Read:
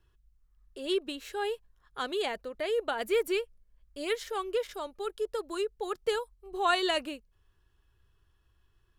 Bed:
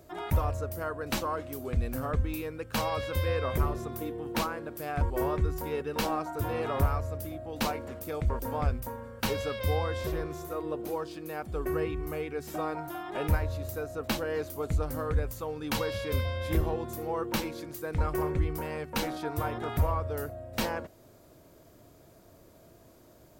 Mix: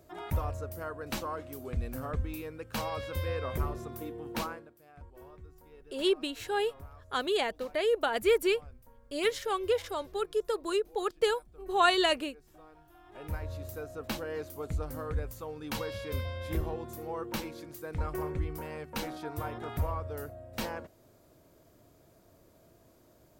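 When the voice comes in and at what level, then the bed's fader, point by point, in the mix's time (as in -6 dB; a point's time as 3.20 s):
5.15 s, +2.5 dB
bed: 4.52 s -4.5 dB
4.77 s -22.5 dB
12.87 s -22.5 dB
13.52 s -5 dB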